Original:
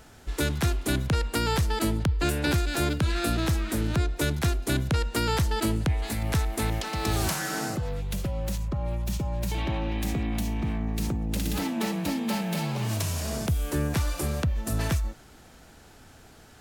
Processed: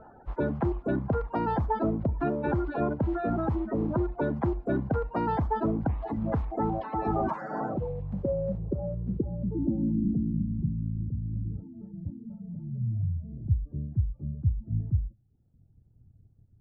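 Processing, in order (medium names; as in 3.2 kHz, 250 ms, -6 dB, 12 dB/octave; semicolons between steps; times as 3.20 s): coarse spectral quantiser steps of 30 dB; reverb removal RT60 0.91 s; dynamic bell 260 Hz, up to +5 dB, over -40 dBFS, Q 0.74; in parallel at -3.5 dB: saturation -31 dBFS, distortion -6 dB; on the sum: low-pass sweep 940 Hz -> 110 Hz, 7.65–11.09 s; on a send at -18.5 dB: reverberation RT60 0.50 s, pre-delay 31 ms; on the sum: trim -5.5 dB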